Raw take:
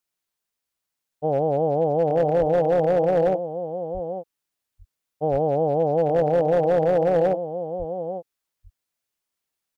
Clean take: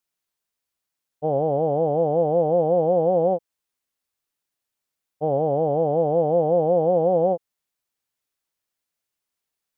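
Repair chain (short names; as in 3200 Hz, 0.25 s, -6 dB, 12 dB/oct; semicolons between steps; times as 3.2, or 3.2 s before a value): clip repair -14 dBFS; de-plosive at 2.39/3.93/5.31/7.78; inverse comb 0.849 s -10 dB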